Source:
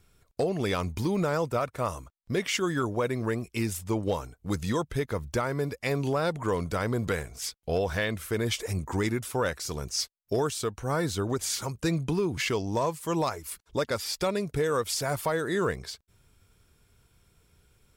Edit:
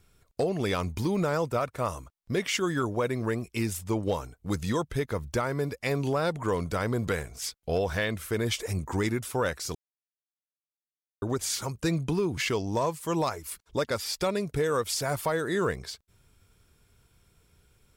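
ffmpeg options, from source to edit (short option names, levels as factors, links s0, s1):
-filter_complex "[0:a]asplit=3[s0][s1][s2];[s0]atrim=end=9.75,asetpts=PTS-STARTPTS,afade=t=out:st=9.746:d=0.004:c=hsin[s3];[s1]atrim=start=9.75:end=11.22,asetpts=PTS-STARTPTS,volume=0[s4];[s2]atrim=start=11.22,asetpts=PTS-STARTPTS,afade=t=in:d=0.004:c=hsin[s5];[s3][s4][s5]concat=n=3:v=0:a=1"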